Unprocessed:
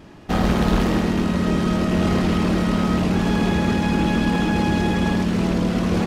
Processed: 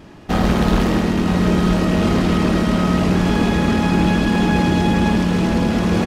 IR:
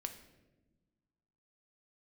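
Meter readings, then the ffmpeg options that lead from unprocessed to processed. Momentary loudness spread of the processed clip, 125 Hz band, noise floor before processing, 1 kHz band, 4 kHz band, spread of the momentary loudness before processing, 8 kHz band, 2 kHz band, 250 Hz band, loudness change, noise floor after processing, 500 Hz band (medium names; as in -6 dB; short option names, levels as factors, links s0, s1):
2 LU, +3.5 dB, -26 dBFS, +3.5 dB, +3.0 dB, 1 LU, +3.0 dB, +3.0 dB, +3.0 dB, +3.0 dB, -26 dBFS, +3.5 dB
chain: -af "aecho=1:1:965:0.447,volume=1.33"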